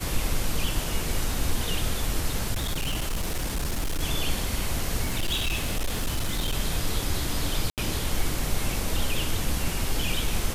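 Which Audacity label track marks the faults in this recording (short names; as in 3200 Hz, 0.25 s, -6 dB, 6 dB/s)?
2.530000	4.030000	clipped -23.5 dBFS
5.030000	6.550000	clipped -22 dBFS
7.700000	7.780000	gap 78 ms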